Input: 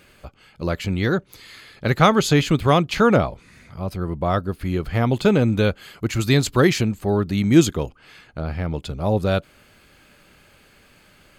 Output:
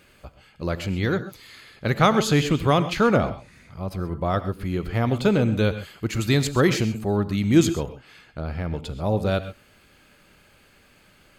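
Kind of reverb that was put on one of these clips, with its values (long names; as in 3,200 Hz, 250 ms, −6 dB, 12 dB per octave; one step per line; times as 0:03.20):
reverb whose tail is shaped and stops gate 150 ms rising, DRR 11.5 dB
level −3 dB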